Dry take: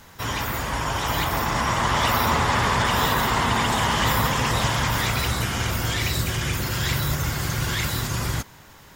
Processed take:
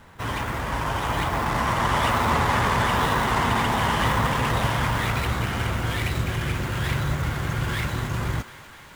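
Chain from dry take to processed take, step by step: median filter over 9 samples; on a send: thinning echo 0.249 s, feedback 85%, high-pass 540 Hz, level -16 dB

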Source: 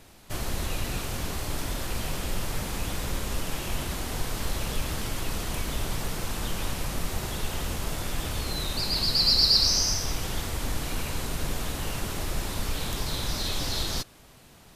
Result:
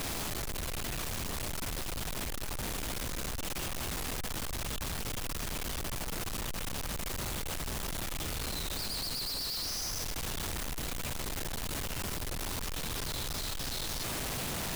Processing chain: infinite clipping; gain -7.5 dB

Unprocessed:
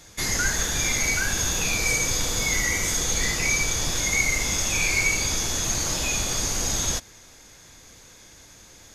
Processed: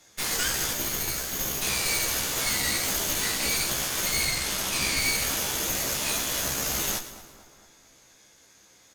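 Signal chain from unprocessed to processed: HPF 260 Hz 6 dB/oct; 0.73–1.62 differentiator; 4.27–5 steep low-pass 6600 Hz; added harmonics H 8 -7 dB, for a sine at -10 dBFS; doubler 15 ms -5 dB; split-band echo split 1500 Hz, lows 0.228 s, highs 0.112 s, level -13 dB; gain -8.5 dB

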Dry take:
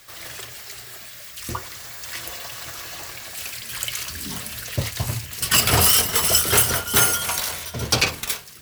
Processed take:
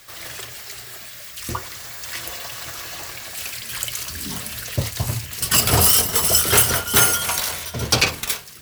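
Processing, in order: 3.79–6.39 dynamic EQ 2200 Hz, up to -5 dB, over -35 dBFS, Q 0.71; gain +2 dB

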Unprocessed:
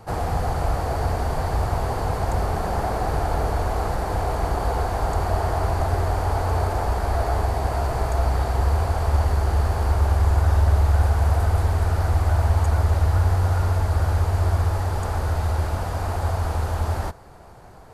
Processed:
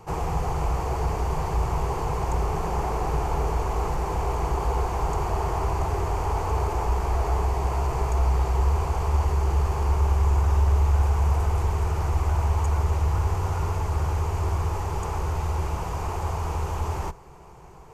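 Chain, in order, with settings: ripple EQ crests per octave 0.74, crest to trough 9 dB; in parallel at -12 dB: soft clip -22.5 dBFS, distortion -9 dB; on the sum: gain -4.5 dB

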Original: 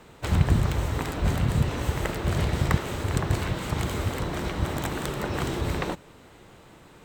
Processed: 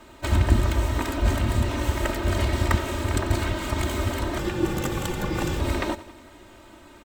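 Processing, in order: comb 3.2 ms, depth 95%; 4.38–5.6 frequency shift -410 Hz; on a send: feedback echo 91 ms, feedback 58%, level -17 dB

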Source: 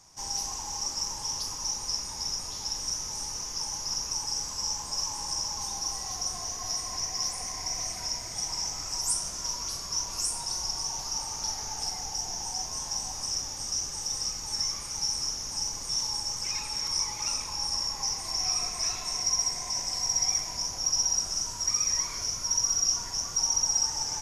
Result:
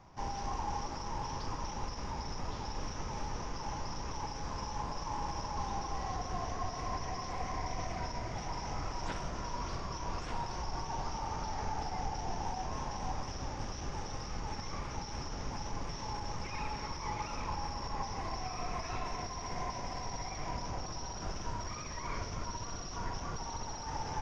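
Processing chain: median filter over 5 samples; limiter -28 dBFS, peak gain reduction 10.5 dB; tape spacing loss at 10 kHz 37 dB; gain +8 dB

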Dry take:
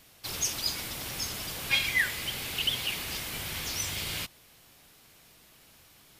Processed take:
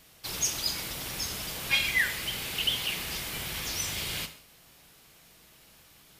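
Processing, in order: non-linear reverb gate 0.21 s falling, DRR 8.5 dB

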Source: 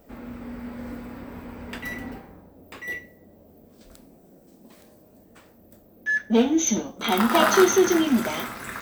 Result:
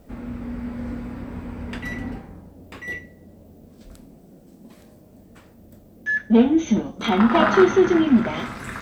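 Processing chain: tone controls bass +8 dB, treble -2 dB; treble ducked by the level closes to 2800 Hz, closed at -17.5 dBFS; requantised 12-bit, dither triangular; gain +1 dB

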